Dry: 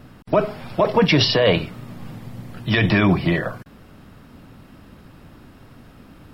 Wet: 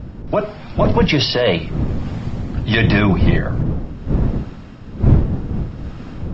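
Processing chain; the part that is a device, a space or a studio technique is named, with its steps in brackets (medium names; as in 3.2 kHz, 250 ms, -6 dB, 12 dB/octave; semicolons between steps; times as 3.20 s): smartphone video outdoors (wind noise 150 Hz -22 dBFS; level rider gain up to 15.5 dB; trim -1 dB; AAC 48 kbps 16 kHz)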